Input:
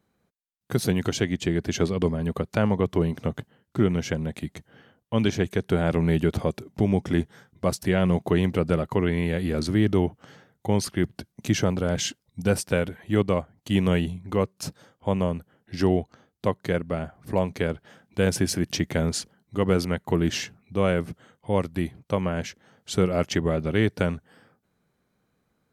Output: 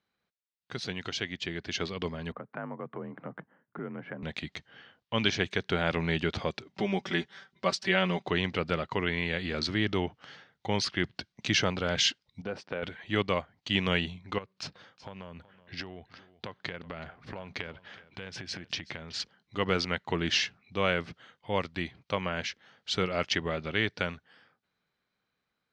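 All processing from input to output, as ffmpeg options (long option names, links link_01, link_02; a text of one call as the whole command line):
ffmpeg -i in.wav -filter_complex "[0:a]asettb=1/sr,asplit=3[link_01][link_02][link_03];[link_01]atrim=end=2.324[link_04];[link_02]atrim=start=2.32:end=4.23,asetpts=PTS-STARTPTS,afade=type=in:duration=0.004:curve=qsin,afade=type=out:start_time=1.906:duration=0.004:curve=qsin,afreqshift=41,acompressor=threshold=-34dB:ratio=2:attack=3.2:release=140:knee=1:detection=peak,lowpass=frequency=1600:width=0.5412,lowpass=frequency=1600:width=1.3066[link_05];[link_03]atrim=start=4.226[link_06];[link_04][link_05]acrossfade=duration=0.004:curve1=hsin:curve2=qsin[link_07];[link_07][link_06]acrossfade=duration=0.004:curve1=qsin:curve2=hsin,asettb=1/sr,asplit=3[link_08][link_09][link_10];[link_08]atrim=end=6.754[link_11];[link_09]atrim=start=6.75:end=8.28,asetpts=PTS-STARTPTS,afade=type=in:duration=0.004:curve=qsin,afade=type=out:start_time=1.526:duration=0.004:curve=qsin,highpass=frequency=200:poles=1,aecho=1:1:5.2:0.78,atrim=end_sample=67473[link_12];[link_10]atrim=start=8.276[link_13];[link_11][link_12]acrossfade=duration=0.004:curve1=hsin:curve2=qsin[link_14];[link_14][link_13]acrossfade=duration=0.004:curve1=qsin:curve2=hsin,asettb=1/sr,asplit=3[link_15][link_16][link_17];[link_15]atrim=end=12.414[link_18];[link_16]atrim=start=12.41:end=12.83,asetpts=PTS-STARTPTS,afade=type=in:duration=0.004:curve=qsin,afade=type=out:start_time=0.416:duration=0.004:curve=qsin,bandpass=frequency=440:width_type=q:width=0.61,acompressor=threshold=-24dB:ratio=5:attack=3.2:release=140:knee=1:detection=peak[link_19];[link_17]atrim=start=12.826[link_20];[link_18][link_19]acrossfade=duration=0.004:curve1=hsin:curve2=qsin[link_21];[link_21][link_20]acrossfade=duration=0.004:curve1=qsin:curve2=hsin,asettb=1/sr,asplit=3[link_22][link_23][link_24];[link_22]atrim=end=14.384[link_25];[link_23]atrim=start=14.38:end=19.2,asetpts=PTS-STARTPTS,afade=type=in:duration=0.004:curve=qsin,afade=type=out:start_time=4.816:duration=0.004:curve=qsin,bass=frequency=250:gain=2,treble=frequency=4000:gain=-6,acompressor=threshold=-31dB:ratio=16:attack=3.2:release=140:knee=1:detection=peak,aecho=1:1:375:0.126,atrim=end_sample=212562[link_26];[link_24]atrim=start=19.196[link_27];[link_25][link_26]acrossfade=duration=0.004:curve1=hsin:curve2=qsin[link_28];[link_28][link_27]acrossfade=duration=0.004:curve1=qsin:curve2=hsin,lowpass=frequency=4800:width=0.5412,lowpass=frequency=4800:width=1.3066,tiltshelf=frequency=970:gain=-8.5,dynaudnorm=framelen=490:gausssize=9:maxgain=11.5dB,volume=-8.5dB" out.wav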